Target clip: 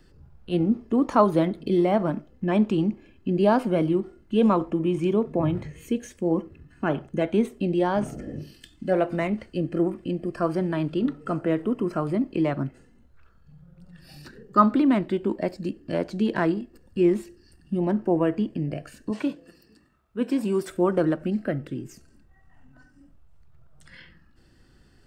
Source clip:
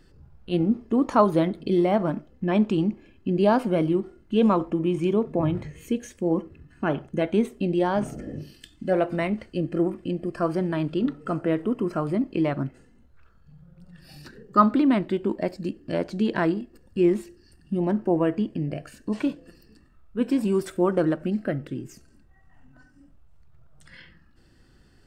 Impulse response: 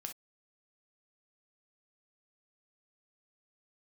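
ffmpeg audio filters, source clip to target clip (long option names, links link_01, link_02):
-filter_complex "[0:a]asettb=1/sr,asplit=3[link_01][link_02][link_03];[link_01]atrim=end=19.104[link_04];[link_02]atrim=start=19.1:end=20.69,asetpts=PTS-STARTPTS,afade=type=in:duration=0.004:curve=qsin,afade=type=out:start_time=1.586:duration=0.004:curve=qsin,highpass=frequency=180:poles=1[link_05];[link_03]atrim=start=20.686[link_06];[link_04][link_05]acrossfade=duration=0.004:curve1=hsin:curve2=qsin[link_07];[link_07][link_06]acrossfade=duration=0.004:curve1=qsin:curve2=hsin,acrossover=split=350|1100|2000[link_08][link_09][link_10][link_11];[link_11]asoftclip=type=tanh:threshold=-33dB[link_12];[link_08][link_09][link_10][link_12]amix=inputs=4:normalize=0"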